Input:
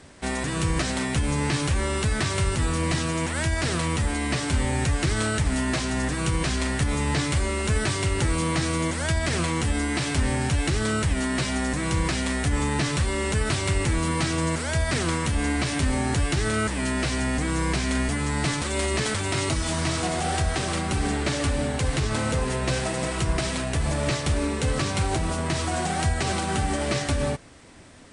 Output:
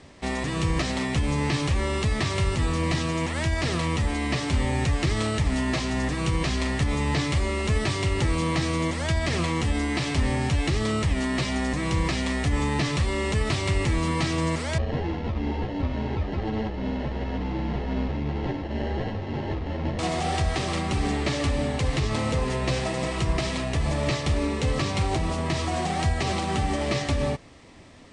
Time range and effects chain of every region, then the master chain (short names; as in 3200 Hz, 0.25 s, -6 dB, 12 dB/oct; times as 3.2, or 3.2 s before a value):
14.78–19.99 sample-rate reducer 1200 Hz + air absorption 210 m + ensemble effect
whole clip: LPF 5900 Hz 12 dB/oct; notch 1500 Hz, Q 5.9